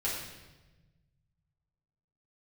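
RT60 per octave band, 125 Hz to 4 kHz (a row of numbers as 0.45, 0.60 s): 2.6, 1.8, 1.3, 1.0, 1.0, 1.0 s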